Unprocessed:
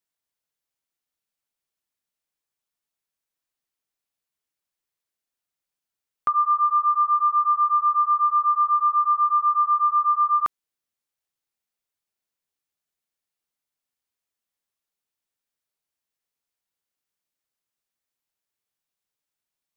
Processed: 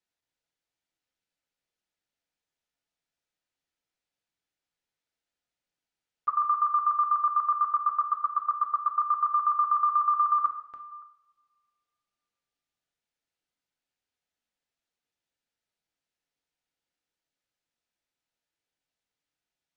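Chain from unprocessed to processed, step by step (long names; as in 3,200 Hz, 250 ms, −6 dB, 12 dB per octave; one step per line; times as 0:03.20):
delay that plays each chunk backwards 424 ms, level −11 dB
notch filter 1,100 Hz, Q 6.2
output level in coarse steps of 22 dB
high-frequency loss of the air 80 metres
coupled-rooms reverb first 0.61 s, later 2.2 s, from −26 dB, DRR 5 dB
level +1.5 dB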